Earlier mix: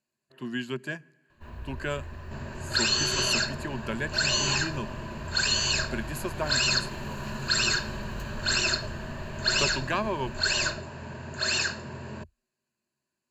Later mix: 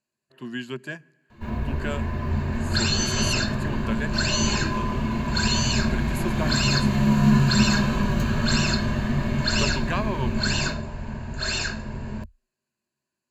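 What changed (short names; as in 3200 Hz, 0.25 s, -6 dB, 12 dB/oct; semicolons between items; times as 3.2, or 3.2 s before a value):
first sound +9.5 dB; second sound: remove HPF 97 Hz 24 dB/oct; reverb: on, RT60 0.50 s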